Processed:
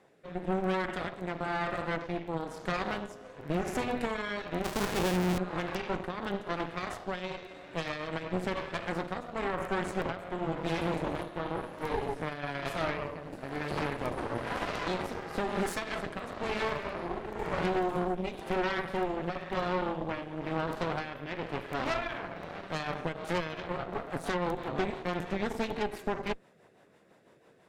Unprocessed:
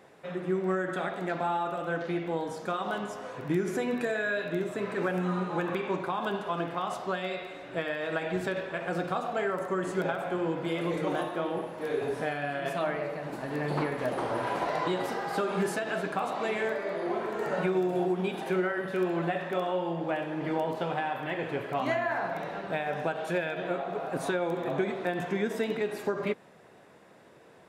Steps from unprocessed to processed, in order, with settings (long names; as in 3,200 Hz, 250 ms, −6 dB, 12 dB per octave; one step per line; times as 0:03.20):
0:04.64–0:05.38: each half-wave held at its own peak
rotating-speaker cabinet horn 1 Hz, later 6 Hz, at 0:22.92
harmonic generator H 4 −12 dB, 8 −15 dB, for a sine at −16 dBFS
level −4 dB